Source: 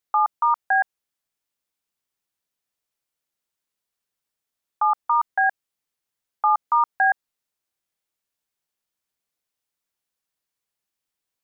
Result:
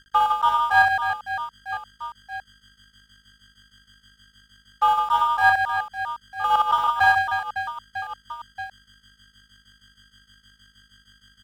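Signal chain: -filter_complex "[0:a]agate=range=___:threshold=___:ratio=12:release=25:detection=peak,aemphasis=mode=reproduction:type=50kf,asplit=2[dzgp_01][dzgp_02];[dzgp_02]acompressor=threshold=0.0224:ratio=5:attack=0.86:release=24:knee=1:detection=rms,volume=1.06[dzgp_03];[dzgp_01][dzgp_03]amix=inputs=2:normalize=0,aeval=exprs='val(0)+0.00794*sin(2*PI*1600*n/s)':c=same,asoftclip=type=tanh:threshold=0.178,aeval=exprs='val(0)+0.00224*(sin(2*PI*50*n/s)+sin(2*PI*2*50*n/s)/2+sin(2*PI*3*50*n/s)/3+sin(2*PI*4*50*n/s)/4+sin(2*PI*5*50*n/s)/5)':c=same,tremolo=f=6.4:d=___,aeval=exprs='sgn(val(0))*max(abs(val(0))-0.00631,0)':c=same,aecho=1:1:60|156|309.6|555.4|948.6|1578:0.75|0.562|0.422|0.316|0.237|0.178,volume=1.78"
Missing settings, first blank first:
0.0398, 0.0708, 0.61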